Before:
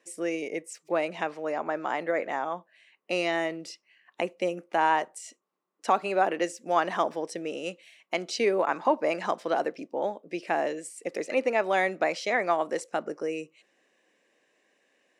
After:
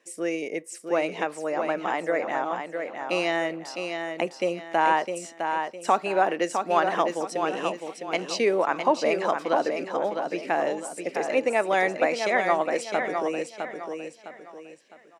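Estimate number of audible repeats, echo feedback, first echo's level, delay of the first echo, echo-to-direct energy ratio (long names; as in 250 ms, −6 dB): 4, 35%, −6.0 dB, 658 ms, −5.5 dB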